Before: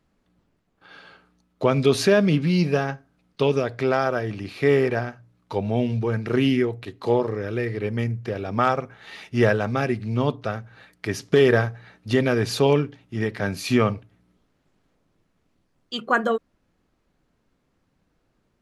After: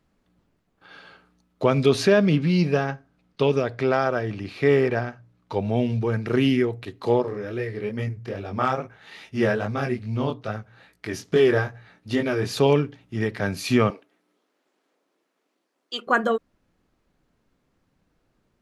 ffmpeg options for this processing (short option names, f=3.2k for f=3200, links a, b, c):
-filter_complex "[0:a]asettb=1/sr,asplit=3[a][b][c];[a]atrim=end=1.894[d];[b]atrim=start=1.89:end=5.57,asetpts=PTS-STARTPTS,afade=t=in:d=0.004:c=qsin,afade=t=out:st=3.676:d=0.004:c=qsin,highshelf=f=9.9k:g=-11[e];[c]atrim=start=5.566[f];[d][e]acrossfade=d=0.004:c1=hsin:c2=qsin[g];[g][f]acrossfade=d=0.004:c1=qsin:c2=hsin,asettb=1/sr,asplit=3[h][i][j];[h]atrim=end=7.224[k];[i]atrim=start=7.22:end=12.57,asetpts=PTS-STARTPTS,afade=t=in:d=0.004:c=qsin,afade=t=out:st=5.346:d=0.004:c=qsin,flanger=delay=18.5:depth=5.8:speed=2.4[l];[j]atrim=start=12.566[m];[k][l]acrossfade=d=0.004:c1=hsin:c2=qsin[n];[n][m]acrossfade=d=0.004:c1=qsin:c2=hsin,asettb=1/sr,asplit=3[o][p][q];[o]atrim=end=13.904[r];[p]atrim=start=13.9:end=16.07,asetpts=PTS-STARTPTS,afade=t=in:d=0.004:c=qsin,afade=t=out:st=2.166:d=0.004:c=qsin,highpass=f=300:w=0.5412,highpass=f=300:w=1.3066[s];[q]atrim=start=16.066[t];[r][s]acrossfade=d=0.004:c1=hsin:c2=qsin[u];[u][t]acrossfade=d=0.004:c1=qsin:c2=hsin"